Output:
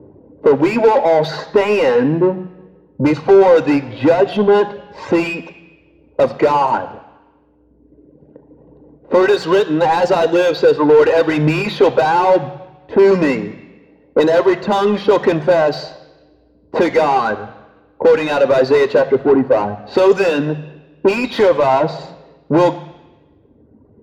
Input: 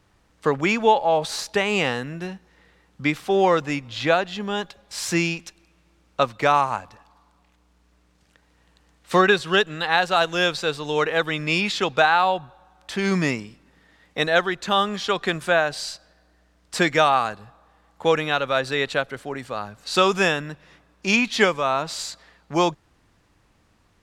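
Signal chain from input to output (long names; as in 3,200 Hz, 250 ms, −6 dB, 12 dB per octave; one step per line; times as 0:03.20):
reverb reduction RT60 1.6 s
low-pass that shuts in the quiet parts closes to 330 Hz, open at −16 dBFS
parametric band 1,300 Hz −10.5 dB 1.1 octaves
downward compressor 5 to 1, threshold −29 dBFS, peak gain reduction 13 dB
mid-hump overdrive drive 33 dB, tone 1,800 Hz, clips at −14.5 dBFS
convolution reverb RT60 1.0 s, pre-delay 3 ms, DRR 11.5 dB
level −2 dB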